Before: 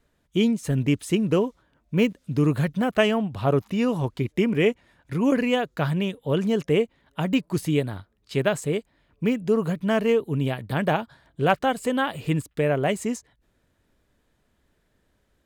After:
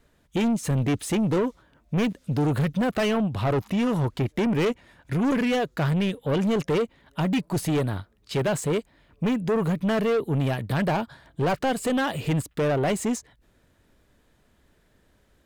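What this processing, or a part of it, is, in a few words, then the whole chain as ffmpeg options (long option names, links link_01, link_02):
saturation between pre-emphasis and de-emphasis: -af "highshelf=frequency=3200:gain=9,asoftclip=type=tanh:threshold=-25dB,highshelf=frequency=3200:gain=-9,volume=5.5dB"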